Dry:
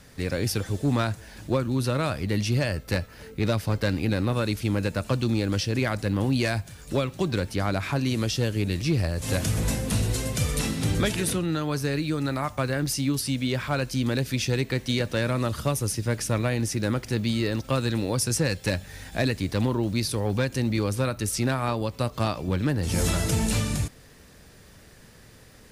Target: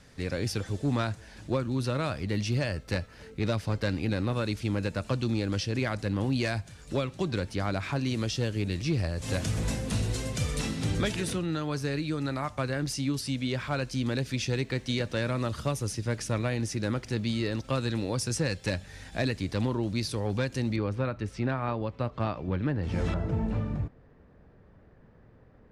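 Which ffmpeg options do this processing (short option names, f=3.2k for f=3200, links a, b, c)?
-af "asetnsamples=n=441:p=0,asendcmd='20.76 lowpass f 2400;23.14 lowpass f 1100',lowpass=8k,volume=-4dB"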